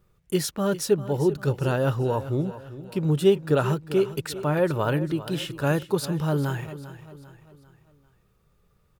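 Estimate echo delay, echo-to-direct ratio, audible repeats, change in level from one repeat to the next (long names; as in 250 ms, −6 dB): 396 ms, −13.5 dB, 3, −7.0 dB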